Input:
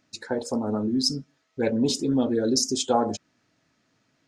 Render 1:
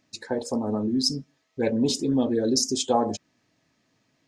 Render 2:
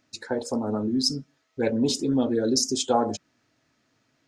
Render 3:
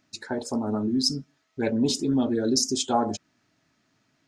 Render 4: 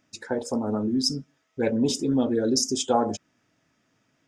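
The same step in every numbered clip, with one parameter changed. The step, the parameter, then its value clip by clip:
notch, frequency: 1400, 180, 500, 4200 Hz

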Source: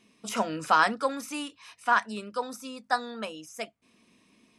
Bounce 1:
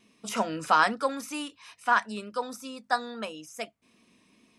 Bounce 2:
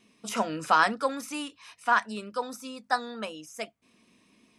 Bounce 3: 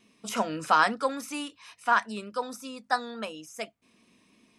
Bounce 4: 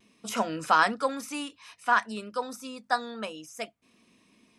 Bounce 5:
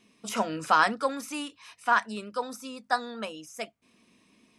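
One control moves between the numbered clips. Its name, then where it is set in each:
vibrato, rate: 2.3, 5.2, 3.5, 0.58, 9.8 Hz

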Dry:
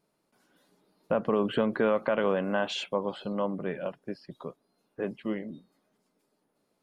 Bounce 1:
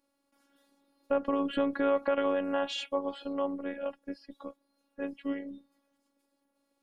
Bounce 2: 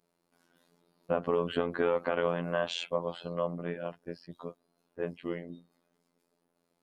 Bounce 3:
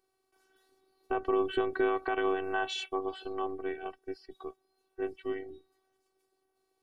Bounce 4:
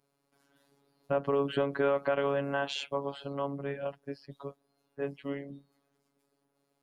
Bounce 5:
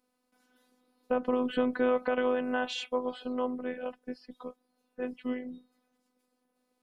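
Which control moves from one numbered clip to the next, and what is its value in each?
robotiser, frequency: 280, 86, 380, 140, 250 Hz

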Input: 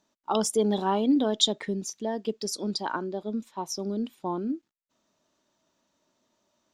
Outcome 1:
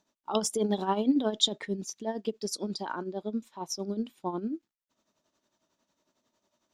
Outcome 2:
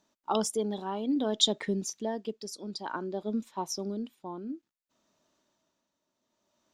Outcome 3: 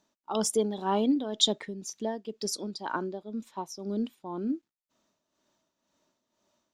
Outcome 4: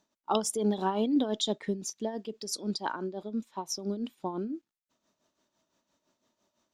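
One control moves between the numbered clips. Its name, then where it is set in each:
tremolo, rate: 11, 0.58, 2, 5.9 Hz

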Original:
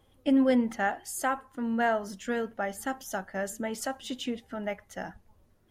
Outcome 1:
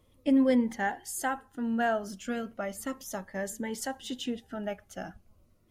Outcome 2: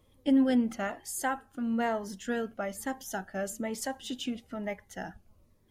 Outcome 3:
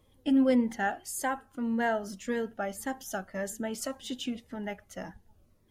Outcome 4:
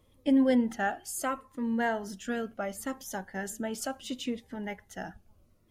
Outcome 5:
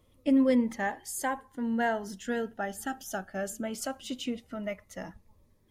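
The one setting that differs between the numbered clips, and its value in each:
cascading phaser, rate: 0.35, 1.1, 1.8, 0.71, 0.21 Hz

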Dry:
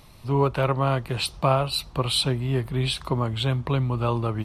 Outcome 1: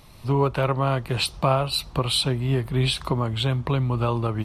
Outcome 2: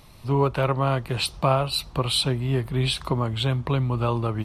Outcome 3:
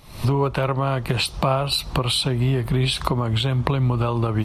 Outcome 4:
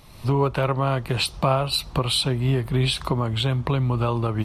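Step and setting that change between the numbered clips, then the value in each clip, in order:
recorder AGC, rising by: 13, 5, 82, 33 dB/s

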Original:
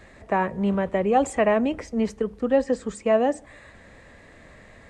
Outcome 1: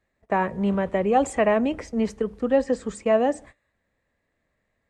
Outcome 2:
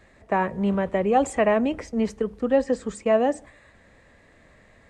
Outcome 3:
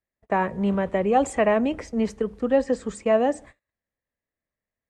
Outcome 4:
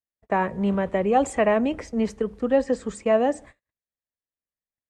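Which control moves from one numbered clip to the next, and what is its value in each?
gate, range: -26, -6, -42, -55 dB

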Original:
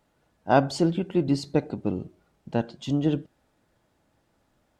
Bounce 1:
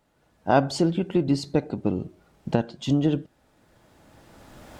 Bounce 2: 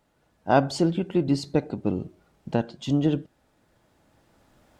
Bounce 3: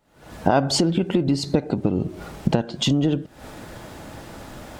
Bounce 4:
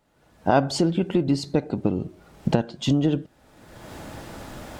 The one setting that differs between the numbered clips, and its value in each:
recorder AGC, rising by: 14, 5.5, 90, 35 dB/s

